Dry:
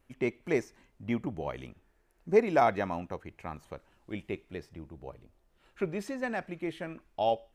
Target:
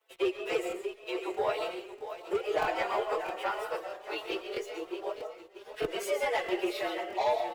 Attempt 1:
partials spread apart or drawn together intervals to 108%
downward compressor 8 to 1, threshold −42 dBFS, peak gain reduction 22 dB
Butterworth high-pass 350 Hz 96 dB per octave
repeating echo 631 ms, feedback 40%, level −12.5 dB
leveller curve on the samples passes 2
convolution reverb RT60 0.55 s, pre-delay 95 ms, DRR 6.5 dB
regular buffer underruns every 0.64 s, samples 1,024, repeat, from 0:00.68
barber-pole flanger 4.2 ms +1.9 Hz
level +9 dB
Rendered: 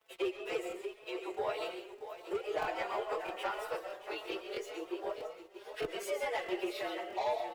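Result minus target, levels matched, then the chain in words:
downward compressor: peak gain reduction +5.5 dB
partials spread apart or drawn together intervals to 108%
downward compressor 8 to 1, threshold −35.5 dBFS, peak gain reduction 16.5 dB
Butterworth high-pass 350 Hz 96 dB per octave
repeating echo 631 ms, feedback 40%, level −12.5 dB
leveller curve on the samples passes 2
convolution reverb RT60 0.55 s, pre-delay 95 ms, DRR 6.5 dB
regular buffer underruns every 0.64 s, samples 1,024, repeat, from 0:00.68
barber-pole flanger 4.2 ms +1.9 Hz
level +9 dB

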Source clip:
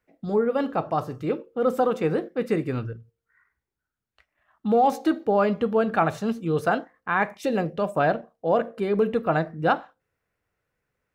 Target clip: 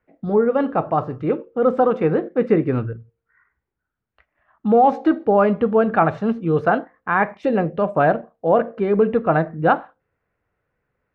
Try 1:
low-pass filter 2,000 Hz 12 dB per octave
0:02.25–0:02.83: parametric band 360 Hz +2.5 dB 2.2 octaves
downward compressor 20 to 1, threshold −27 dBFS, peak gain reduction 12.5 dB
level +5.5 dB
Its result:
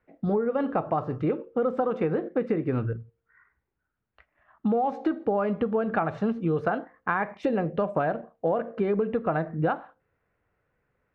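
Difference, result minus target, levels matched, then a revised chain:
downward compressor: peak gain reduction +12.5 dB
low-pass filter 2,000 Hz 12 dB per octave
0:02.25–0:02.83: parametric band 360 Hz +2.5 dB 2.2 octaves
level +5.5 dB

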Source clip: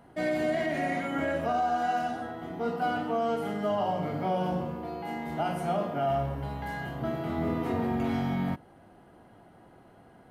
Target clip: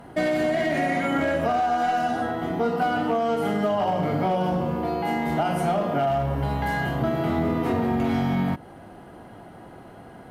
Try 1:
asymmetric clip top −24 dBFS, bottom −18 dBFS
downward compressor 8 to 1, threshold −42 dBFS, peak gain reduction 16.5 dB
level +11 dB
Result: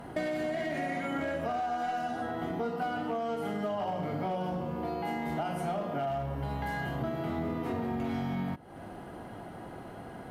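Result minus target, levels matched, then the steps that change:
downward compressor: peak gain reduction +9.5 dB
change: downward compressor 8 to 1, threshold −31 dBFS, peak gain reduction 7 dB

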